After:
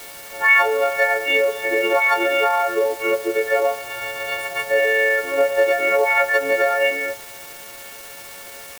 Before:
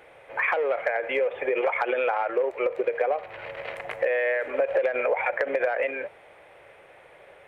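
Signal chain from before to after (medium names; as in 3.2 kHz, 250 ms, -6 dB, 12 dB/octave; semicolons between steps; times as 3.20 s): partials quantised in pitch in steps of 4 st; de-hum 96.95 Hz, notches 19; in parallel at -3 dB: word length cut 6-bit, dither triangular; on the sum: tempo 0.85×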